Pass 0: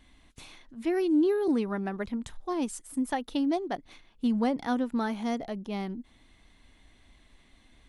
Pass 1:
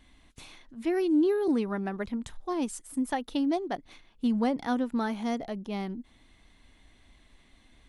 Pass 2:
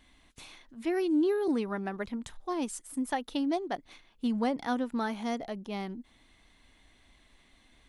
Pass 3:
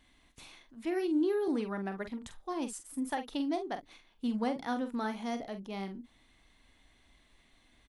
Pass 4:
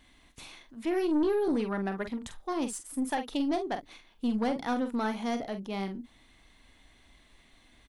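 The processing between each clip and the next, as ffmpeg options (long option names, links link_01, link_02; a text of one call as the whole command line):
ffmpeg -i in.wav -af anull out.wav
ffmpeg -i in.wav -af "lowshelf=frequency=330:gain=-5" out.wav
ffmpeg -i in.wav -filter_complex "[0:a]asplit=2[link_01][link_02];[link_02]adelay=46,volume=-9dB[link_03];[link_01][link_03]amix=inputs=2:normalize=0,volume=-3.5dB" out.wav
ffmpeg -i in.wav -af "aeval=exprs='(tanh(22.4*val(0)+0.25)-tanh(0.25))/22.4':channel_layout=same,volume=5.5dB" out.wav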